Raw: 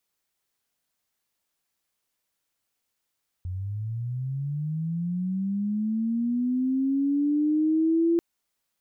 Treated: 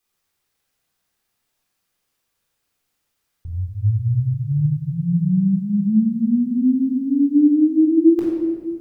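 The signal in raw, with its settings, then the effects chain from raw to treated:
chirp linear 88 Hz -> 340 Hz -29 dBFS -> -18.5 dBFS 4.74 s
shoebox room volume 1400 m³, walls mixed, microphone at 3.8 m

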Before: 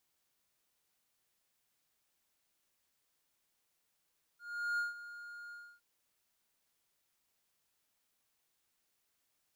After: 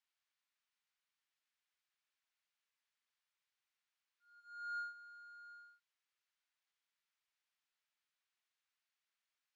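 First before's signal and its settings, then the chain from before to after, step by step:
ADSR triangle 1420 Hz, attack 0.393 s, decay 0.151 s, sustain -15 dB, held 1.13 s, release 0.282 s -29 dBFS
HPF 1500 Hz 12 dB/oct; tape spacing loss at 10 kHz 21 dB; reverse echo 0.194 s -16 dB

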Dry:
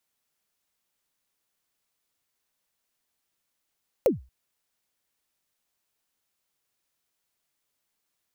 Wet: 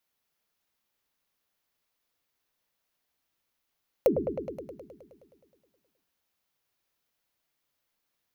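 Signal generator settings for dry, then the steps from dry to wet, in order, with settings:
kick drum length 0.23 s, from 590 Hz, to 63 Hz, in 0.145 s, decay 0.30 s, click on, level -13 dB
bell 8300 Hz -7 dB 0.72 oct; notches 60/120/180/240/300/360/420 Hz; on a send: repeats that get brighter 0.105 s, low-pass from 750 Hz, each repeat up 1 oct, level -6 dB

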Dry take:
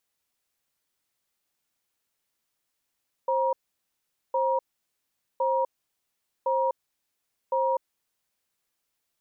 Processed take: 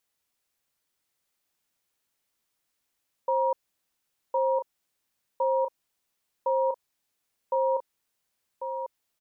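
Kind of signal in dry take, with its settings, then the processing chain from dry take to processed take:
cadence 530 Hz, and 951 Hz, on 0.25 s, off 0.81 s, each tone -24.5 dBFS 4.97 s
echo 1.094 s -8 dB

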